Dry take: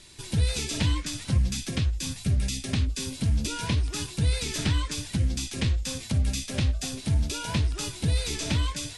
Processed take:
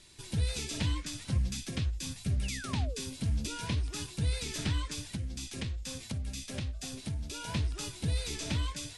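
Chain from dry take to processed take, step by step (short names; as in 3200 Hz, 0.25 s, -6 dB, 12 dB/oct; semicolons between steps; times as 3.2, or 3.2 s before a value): 2.43–3.01 painted sound fall 370–3100 Hz -38 dBFS; 5.02–7.47 compressor 3:1, threshold -28 dBFS, peak gain reduction 7 dB; gain -6.5 dB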